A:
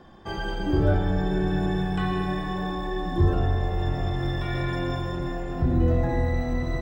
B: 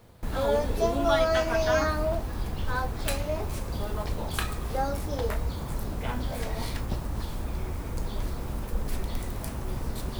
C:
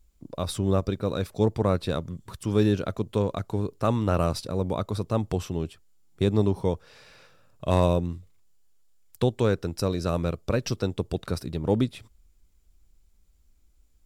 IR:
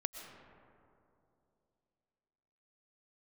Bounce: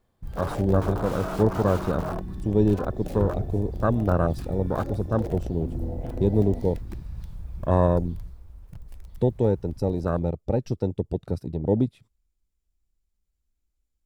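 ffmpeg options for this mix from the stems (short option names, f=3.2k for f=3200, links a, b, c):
-filter_complex "[0:a]volume=-10dB[a];[1:a]aeval=exprs='(mod(10.6*val(0)+1,2)-1)/10.6':c=same,volume=-3dB,afade=t=out:st=7.98:d=0.46:silence=0.446684[b];[2:a]volume=1.5dB[c];[a][b][c]amix=inputs=3:normalize=0,afwtdn=0.0501"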